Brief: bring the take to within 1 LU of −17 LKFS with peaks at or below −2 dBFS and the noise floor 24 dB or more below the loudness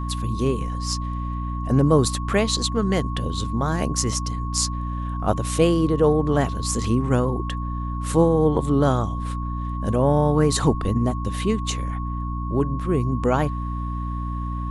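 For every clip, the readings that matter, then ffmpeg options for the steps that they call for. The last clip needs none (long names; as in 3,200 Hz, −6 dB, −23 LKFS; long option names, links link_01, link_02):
mains hum 60 Hz; hum harmonics up to 300 Hz; level of the hum −25 dBFS; interfering tone 1,100 Hz; level of the tone −33 dBFS; integrated loudness −23.0 LKFS; sample peak −4.0 dBFS; target loudness −17.0 LKFS
→ -af "bandreject=frequency=60:width_type=h:width=4,bandreject=frequency=120:width_type=h:width=4,bandreject=frequency=180:width_type=h:width=4,bandreject=frequency=240:width_type=h:width=4,bandreject=frequency=300:width_type=h:width=4"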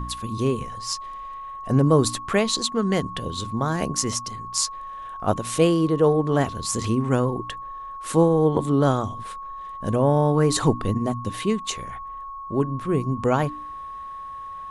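mains hum none found; interfering tone 1,100 Hz; level of the tone −33 dBFS
→ -af "bandreject=frequency=1100:width=30"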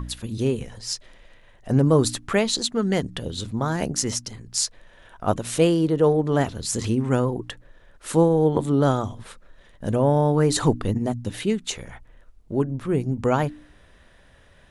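interfering tone none found; integrated loudness −23.0 LKFS; sample peak −4.0 dBFS; target loudness −17.0 LKFS
→ -af "volume=6dB,alimiter=limit=-2dB:level=0:latency=1"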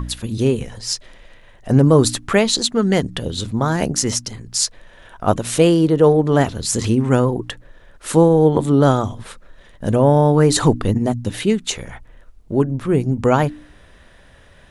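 integrated loudness −17.5 LKFS; sample peak −2.0 dBFS; background noise floor −47 dBFS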